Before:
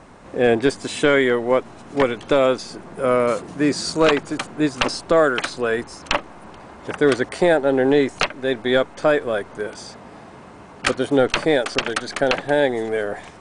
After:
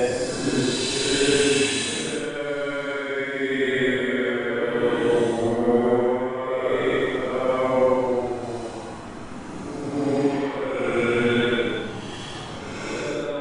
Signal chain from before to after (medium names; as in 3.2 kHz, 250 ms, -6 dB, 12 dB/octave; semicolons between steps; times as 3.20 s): chunks repeated in reverse 202 ms, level -8.5 dB; compressor with a negative ratio -20 dBFS, ratio -0.5; Paulstretch 8.6×, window 0.10 s, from 0.79 s; pre-echo 244 ms -12 dB